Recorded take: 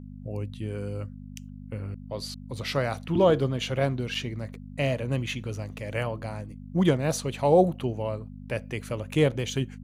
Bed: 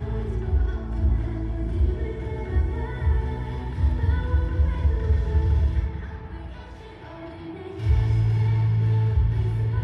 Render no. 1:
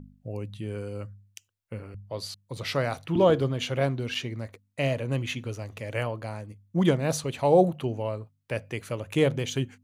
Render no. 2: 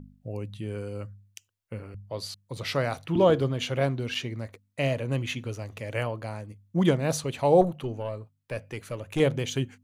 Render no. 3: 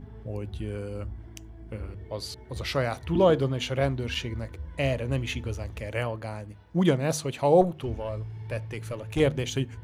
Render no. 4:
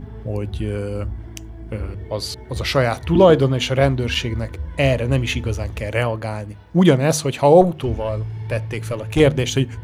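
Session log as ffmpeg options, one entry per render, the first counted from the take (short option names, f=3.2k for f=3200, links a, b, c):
-af "bandreject=f=50:t=h:w=4,bandreject=f=100:t=h:w=4,bandreject=f=150:t=h:w=4,bandreject=f=200:t=h:w=4,bandreject=f=250:t=h:w=4"
-filter_complex "[0:a]asettb=1/sr,asplit=3[a][b][c];[a]atrim=end=7.614[d];[b]atrim=start=7.61:end=9.2,asetpts=PTS-STARTPTS,afade=t=in:d=0.004:c=qsin,afade=t=out:st=1.586:d=0.004:c=qsin,aeval=exprs='(tanh(6.31*val(0)+0.5)-tanh(0.5))/6.31':c=same[e];[c]atrim=start=9.196[f];[d][e]acrossfade=d=0.004:c1=hsin:c2=qsin[g];[g][f]acrossfade=d=0.004:c1=qsin:c2=hsin"
-filter_complex "[1:a]volume=-17.5dB[a];[0:a][a]amix=inputs=2:normalize=0"
-af "volume=9.5dB,alimiter=limit=-1dB:level=0:latency=1"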